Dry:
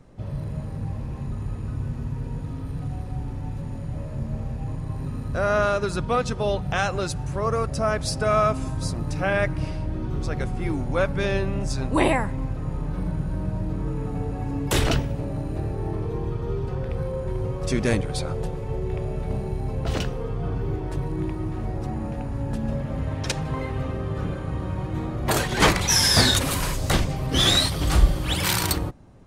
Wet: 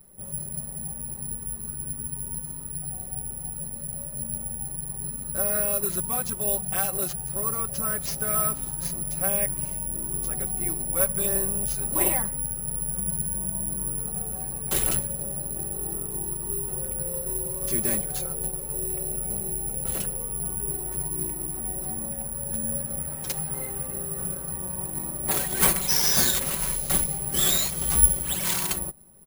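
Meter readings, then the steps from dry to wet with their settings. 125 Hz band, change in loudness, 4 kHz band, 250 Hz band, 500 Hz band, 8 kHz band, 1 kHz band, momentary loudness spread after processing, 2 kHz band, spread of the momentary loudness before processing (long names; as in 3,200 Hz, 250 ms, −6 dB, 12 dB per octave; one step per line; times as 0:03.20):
−11.0 dB, 0.0 dB, −8.0 dB, −8.5 dB, −8.5 dB, +7.5 dB, −8.5 dB, 11 LU, −8.5 dB, 11 LU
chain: comb filter 5.3 ms, depth 95%
bad sample-rate conversion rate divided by 4×, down none, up zero stuff
level −11.5 dB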